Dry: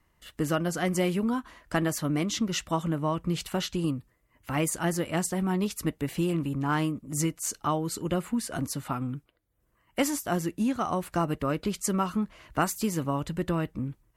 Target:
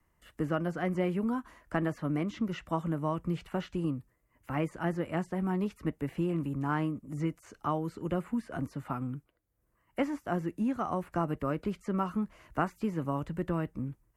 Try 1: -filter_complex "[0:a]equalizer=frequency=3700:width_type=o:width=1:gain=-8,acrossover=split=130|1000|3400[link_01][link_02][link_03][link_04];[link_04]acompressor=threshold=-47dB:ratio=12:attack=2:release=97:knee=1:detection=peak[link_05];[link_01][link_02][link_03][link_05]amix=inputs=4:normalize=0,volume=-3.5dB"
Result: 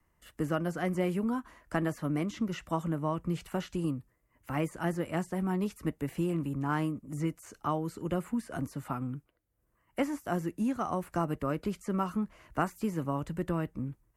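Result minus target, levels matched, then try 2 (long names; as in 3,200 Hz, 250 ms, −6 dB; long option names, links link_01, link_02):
downward compressor: peak gain reduction −11 dB
-filter_complex "[0:a]equalizer=frequency=3700:width_type=o:width=1:gain=-8,acrossover=split=130|1000|3400[link_01][link_02][link_03][link_04];[link_04]acompressor=threshold=-59dB:ratio=12:attack=2:release=97:knee=1:detection=peak[link_05];[link_01][link_02][link_03][link_05]amix=inputs=4:normalize=0,volume=-3.5dB"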